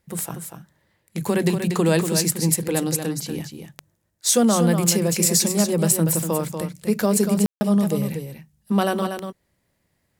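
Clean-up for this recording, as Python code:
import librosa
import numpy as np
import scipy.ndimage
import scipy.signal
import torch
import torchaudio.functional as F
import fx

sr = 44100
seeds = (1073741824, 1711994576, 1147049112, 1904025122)

y = fx.fix_declip(x, sr, threshold_db=-5.5)
y = fx.fix_declick_ar(y, sr, threshold=10.0)
y = fx.fix_ambience(y, sr, seeds[0], print_start_s=9.6, print_end_s=10.1, start_s=7.46, end_s=7.61)
y = fx.fix_echo_inverse(y, sr, delay_ms=239, level_db=-7.5)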